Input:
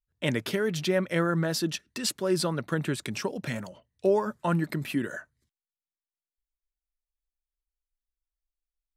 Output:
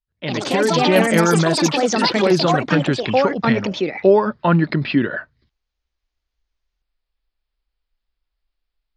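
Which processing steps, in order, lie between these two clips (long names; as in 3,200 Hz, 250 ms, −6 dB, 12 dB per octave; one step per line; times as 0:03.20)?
downsampling to 11,025 Hz
delay with pitch and tempo change per echo 105 ms, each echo +5 semitones, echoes 3
automatic gain control gain up to 13.5 dB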